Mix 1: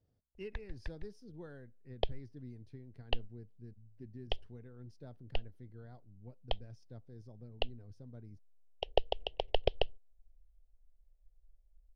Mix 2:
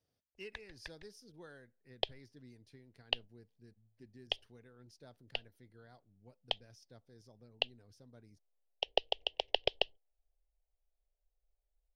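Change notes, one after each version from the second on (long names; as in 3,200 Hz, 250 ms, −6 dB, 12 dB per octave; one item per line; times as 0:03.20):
master: add spectral tilt +3.5 dB per octave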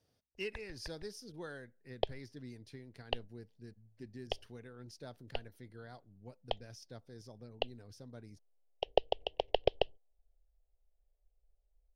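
speech +8.0 dB
background: add tilt shelving filter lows +8.5 dB, about 1,200 Hz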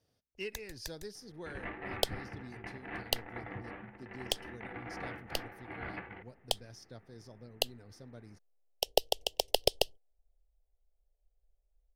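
first sound: remove low-pass filter 2,700 Hz 24 dB per octave
second sound: unmuted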